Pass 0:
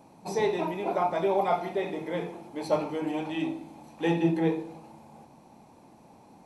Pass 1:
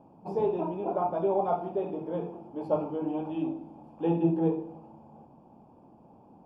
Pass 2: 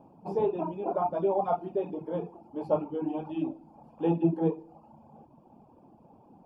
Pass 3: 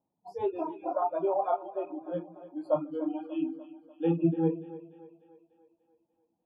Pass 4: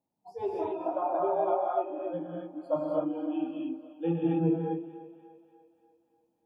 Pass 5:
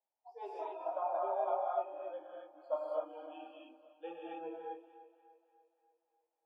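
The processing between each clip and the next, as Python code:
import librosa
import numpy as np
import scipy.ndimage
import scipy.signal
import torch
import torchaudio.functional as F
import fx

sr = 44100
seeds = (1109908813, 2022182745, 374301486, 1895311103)

y1 = np.convolve(x, np.full(22, 1.0 / 22))[:len(x)]
y2 = fx.dereverb_blind(y1, sr, rt60_s=0.77)
y2 = y2 * librosa.db_to_amplitude(1.0)
y3 = fx.noise_reduce_blind(y2, sr, reduce_db=28)
y3 = fx.echo_split(y3, sr, split_hz=400.0, low_ms=144, high_ms=294, feedback_pct=52, wet_db=-15.0)
y4 = fx.rev_gated(y3, sr, seeds[0], gate_ms=290, shape='rising', drr_db=-3.0)
y4 = y4 * librosa.db_to_amplitude(-3.0)
y5 = fx.env_lowpass(y4, sr, base_hz=2400.0, full_db=-26.0)
y5 = scipy.signal.sosfilt(scipy.signal.butter(4, 540.0, 'highpass', fs=sr, output='sos'), y5)
y5 = y5 * librosa.db_to_amplitude(-5.0)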